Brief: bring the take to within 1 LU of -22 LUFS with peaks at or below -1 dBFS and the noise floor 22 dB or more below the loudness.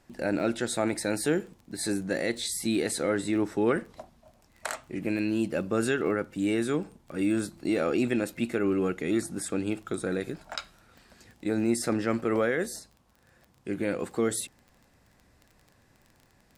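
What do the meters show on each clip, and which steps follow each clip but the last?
ticks 20/s; loudness -29.5 LUFS; peak -13.5 dBFS; loudness target -22.0 LUFS
-> de-click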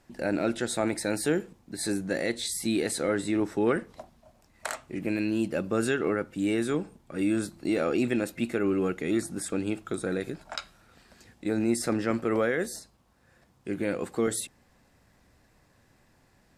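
ticks 0/s; loudness -29.5 LUFS; peak -13.5 dBFS; loudness target -22.0 LUFS
-> gain +7.5 dB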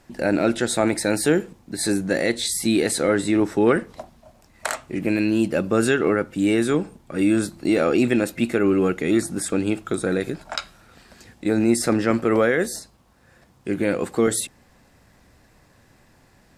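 loudness -22.0 LUFS; peak -6.0 dBFS; noise floor -57 dBFS

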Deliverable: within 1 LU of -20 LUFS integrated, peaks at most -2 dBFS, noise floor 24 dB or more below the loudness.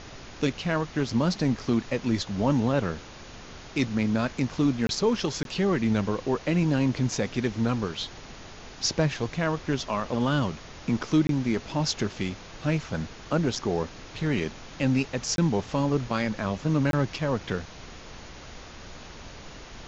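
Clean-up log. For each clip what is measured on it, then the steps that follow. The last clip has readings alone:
dropouts 5; longest dropout 22 ms; noise floor -45 dBFS; noise floor target -52 dBFS; loudness -27.5 LUFS; peak -11.5 dBFS; loudness target -20.0 LUFS
-> interpolate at 4.87/5.43/11.27/15.36/16.91, 22 ms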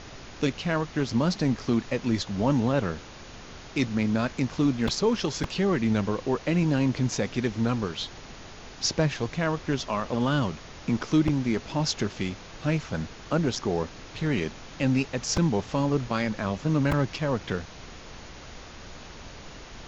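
dropouts 0; noise floor -45 dBFS; noise floor target -52 dBFS
-> noise print and reduce 7 dB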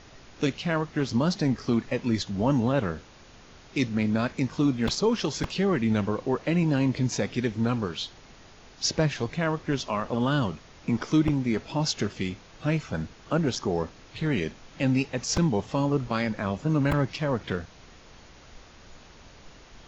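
noise floor -51 dBFS; noise floor target -52 dBFS
-> noise print and reduce 6 dB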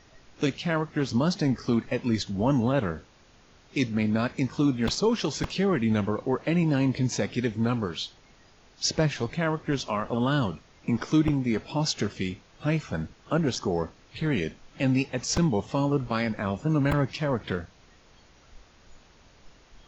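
noise floor -57 dBFS; loudness -27.5 LUFS; peak -11.5 dBFS; loudness target -20.0 LUFS
-> gain +7.5 dB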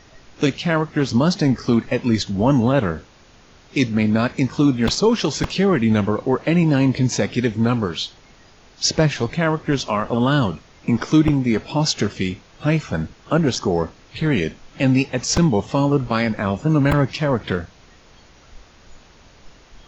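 loudness -20.0 LUFS; peak -4.0 dBFS; noise floor -50 dBFS

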